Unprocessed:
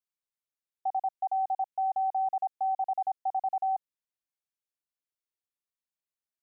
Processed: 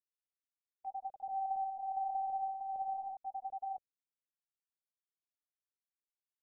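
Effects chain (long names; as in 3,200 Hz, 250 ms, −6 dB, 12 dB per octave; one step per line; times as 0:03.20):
drawn EQ curve 390 Hz 0 dB, 620 Hz −5 dB, 1,400 Hz −21 dB
linear-prediction vocoder at 8 kHz pitch kept
0:01.08–0:03.17: flutter between parallel walls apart 10.2 metres, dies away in 1 s
noise gate −53 dBFS, range −18 dB
level −2.5 dB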